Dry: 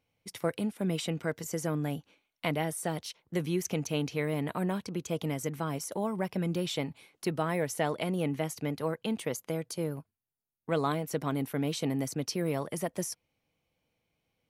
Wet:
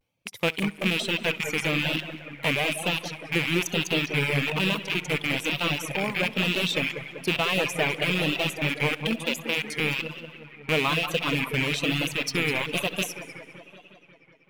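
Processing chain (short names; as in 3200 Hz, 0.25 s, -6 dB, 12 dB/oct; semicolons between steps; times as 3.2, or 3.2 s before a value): rattling part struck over -43 dBFS, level -19 dBFS; 9.22–9.8 Bessel high-pass 260 Hz, order 8; in parallel at -9 dB: bit-crush 5-bit; on the sum: notch 720 Hz, Q 21; multi-head echo 66 ms, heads first and third, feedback 54%, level -12 dB; dynamic EQ 3400 Hz, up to +8 dB, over -47 dBFS, Q 3.1; on a send: dark delay 0.185 s, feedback 70%, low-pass 2500 Hz, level -7 dB; on the sum: vibrato 1.1 Hz 96 cents; reverb removal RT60 1.7 s; gain +1 dB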